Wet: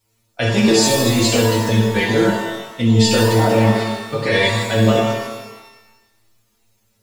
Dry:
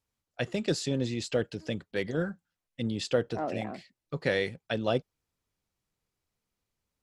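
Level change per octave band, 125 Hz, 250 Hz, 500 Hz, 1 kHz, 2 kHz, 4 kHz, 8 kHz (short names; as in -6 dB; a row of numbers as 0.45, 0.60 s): +18.5, +17.0, +14.0, +18.5, +16.0, +18.0, +21.5 dB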